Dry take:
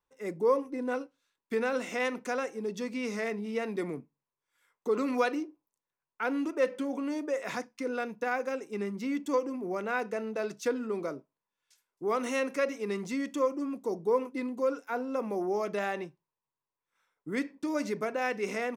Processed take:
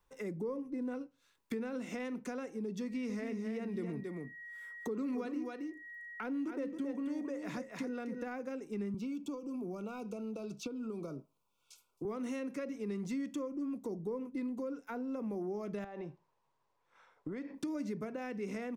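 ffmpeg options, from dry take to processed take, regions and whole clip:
-filter_complex "[0:a]asettb=1/sr,asplit=3[a][b][c];[a]atrim=end=2.824[d];[b]atrim=start=2.82:end=8.22,asetpts=PTS-STARTPTS,afade=t=in:d=0.004:c=qsin,afade=t=out:st=5.396:d=0.004:c=qsin,aeval=exprs='val(0)+0.002*sin(2*PI*1900*n/s)':c=same,aecho=1:1:272:0.422,atrim=end_sample=238140[e];[c]atrim=start=8.216[f];[d][e]acrossfade=d=0.004:c1=hsin:c2=qsin[g];[g][f]acrossfade=d=0.004:c1=qsin:c2=hsin,asettb=1/sr,asplit=3[h][i][j];[h]atrim=end=8.944[k];[i]atrim=start=8.94:end=12.05,asetpts=PTS-STARTPTS,afade=t=in:d=0.004:c=qsin,afade=t=out:st=3.106:d=0.004:c=qsin,acrossover=split=220|4600[l][m][n];[l]acompressor=threshold=-46dB:ratio=4[o];[m]acompressor=threshold=-39dB:ratio=4[p];[n]acompressor=threshold=-60dB:ratio=4[q];[o][p][q]amix=inputs=3:normalize=0,asuperstop=centerf=1800:order=20:qfactor=2.4[r];[j]atrim=start=12.046[s];[k][r]acrossfade=d=0.004:c1=hsin:c2=qsin[t];[t][s]acrossfade=d=0.004:c1=qsin:c2=hsin,asettb=1/sr,asplit=3[u][v][w];[u]atrim=end=15.844[x];[v]atrim=start=15.84:end=17.55,asetpts=PTS-STARTPTS,afade=t=in:d=0.004:c=qsin,afade=t=out:st=1.706:d=0.004:c=qsin,equalizer=f=700:w=0.68:g=9.5,acompressor=threshold=-38dB:ratio=6:attack=3.2:release=140:knee=1:detection=peak,lowpass=5.8k[y];[w]atrim=start=17.546[z];[x][y]acrossfade=d=0.004:c1=hsin:c2=qsin[aa];[aa][z]acrossfade=d=0.004:c1=qsin:c2=hsin,acrossover=split=310[ab][ac];[ac]acompressor=threshold=-49dB:ratio=2.5[ad];[ab][ad]amix=inputs=2:normalize=0,lowshelf=f=98:g=10.5,acompressor=threshold=-50dB:ratio=2,volume=7dB"

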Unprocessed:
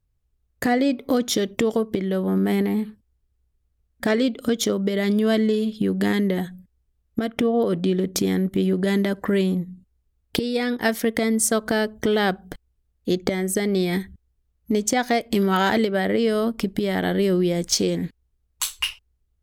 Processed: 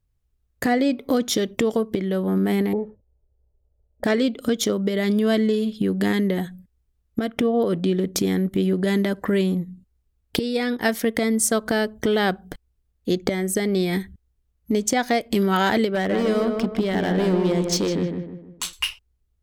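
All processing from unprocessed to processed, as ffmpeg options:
-filter_complex "[0:a]asettb=1/sr,asplit=3[a][b][c];[a]atrim=end=2.734[d];[b]atrim=start=2.73:end=4.04,asetpts=PTS-STARTPTS,afade=t=in:d=0.004:c=qsin,afade=t=out:st=1.306:d=0.004:c=qsin,lowpass=f=630:t=q:w=6.2,aecho=1:1:2.2:0.56,atrim=end_sample=57771[e];[c]atrim=start=4.036[f];[d][e]acrossfade=d=0.004:c1=hsin:c2=qsin[g];[g][f]acrossfade=d=0.004:c1=qsin:c2=hsin,asettb=1/sr,asplit=3[h][i][j];[h]atrim=end=15.954[k];[i]atrim=start=15.95:end=18.73,asetpts=PTS-STARTPTS,afade=t=in:d=0.004:c=qsin,afade=t=out:st=2.776:d=0.004:c=qsin,adynamicsmooth=sensitivity=6:basefreq=5.4k,asoftclip=type=hard:threshold=-18.5dB,asplit=2[l][m];[m]adelay=155,lowpass=f=1.8k:p=1,volume=-4dB,asplit=2[n][o];[o]adelay=155,lowpass=f=1.8k:p=1,volume=0.42,asplit=2[p][q];[q]adelay=155,lowpass=f=1.8k:p=1,volume=0.42,asplit=2[r][s];[s]adelay=155,lowpass=f=1.8k:p=1,volume=0.42,asplit=2[t][u];[u]adelay=155,lowpass=f=1.8k:p=1,volume=0.42[v];[l][n][p][r][t][v]amix=inputs=6:normalize=0,atrim=end_sample=122598[w];[j]atrim=start=18.726[x];[k][w]acrossfade=d=0.004:c1=hsin:c2=qsin[y];[y][x]acrossfade=d=0.004:c1=qsin:c2=hsin"

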